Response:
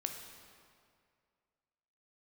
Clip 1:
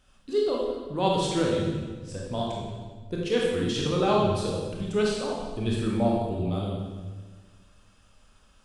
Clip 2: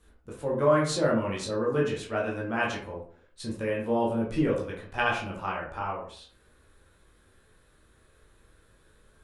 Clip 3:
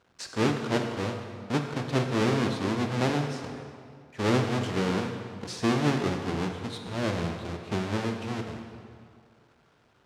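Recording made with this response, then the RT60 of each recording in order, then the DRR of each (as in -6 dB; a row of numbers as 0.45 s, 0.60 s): 3; 1.5 s, 0.50 s, 2.2 s; -3.0 dB, -4.0 dB, 3.5 dB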